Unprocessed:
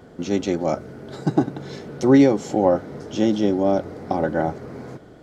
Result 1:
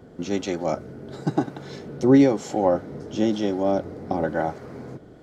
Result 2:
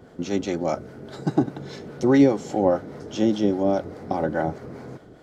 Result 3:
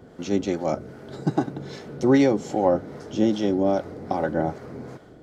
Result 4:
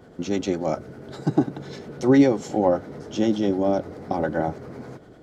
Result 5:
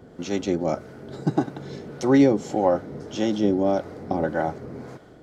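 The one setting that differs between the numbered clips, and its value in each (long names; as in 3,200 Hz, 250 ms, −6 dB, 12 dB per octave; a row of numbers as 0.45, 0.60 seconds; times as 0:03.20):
two-band tremolo in antiphase, speed: 1, 4.9, 2.5, 10, 1.7 Hertz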